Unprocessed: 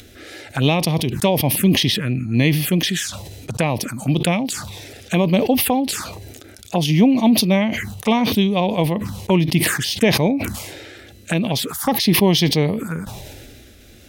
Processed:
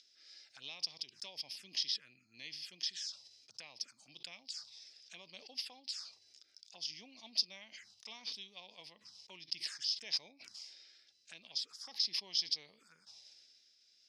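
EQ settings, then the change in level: band-pass filter 5.1 kHz, Q 9.6; distance through air 69 m; -1.5 dB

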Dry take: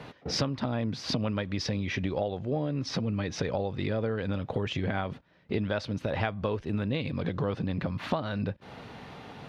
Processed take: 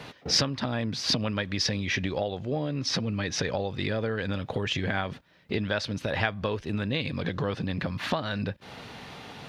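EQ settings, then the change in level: treble shelf 2.3 kHz +10 dB; dynamic bell 1.7 kHz, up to +5 dB, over -50 dBFS, Q 5.4; 0.0 dB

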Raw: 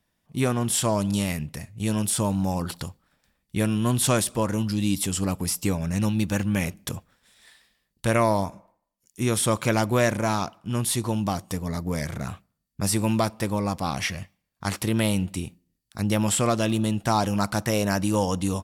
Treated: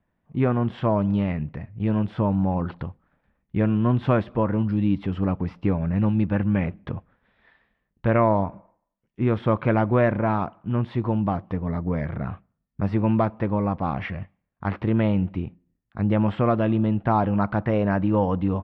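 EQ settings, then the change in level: low-pass 2 kHz 12 dB/octave; distance through air 340 m; +3.0 dB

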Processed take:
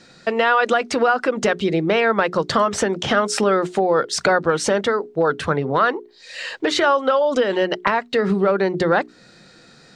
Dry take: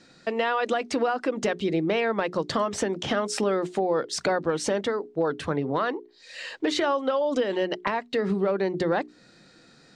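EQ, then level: peaking EQ 290 Hz -6 dB 0.34 oct; dynamic bell 1.4 kHz, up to +6 dB, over -44 dBFS, Q 3; +7.0 dB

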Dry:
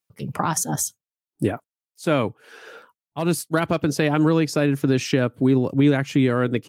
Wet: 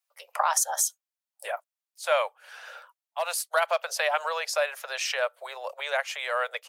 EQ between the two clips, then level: steep high-pass 550 Hz 72 dB/octave; 0.0 dB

